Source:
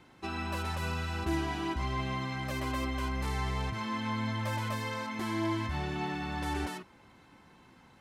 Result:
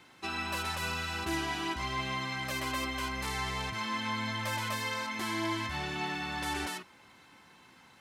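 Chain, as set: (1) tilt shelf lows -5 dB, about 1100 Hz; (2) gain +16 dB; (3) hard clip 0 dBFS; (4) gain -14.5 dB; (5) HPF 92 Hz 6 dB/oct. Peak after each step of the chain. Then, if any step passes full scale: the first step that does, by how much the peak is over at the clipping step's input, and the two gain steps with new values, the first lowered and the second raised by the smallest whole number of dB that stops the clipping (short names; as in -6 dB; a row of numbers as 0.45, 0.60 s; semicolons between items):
-19.5, -3.5, -3.5, -18.0, -18.5 dBFS; no overload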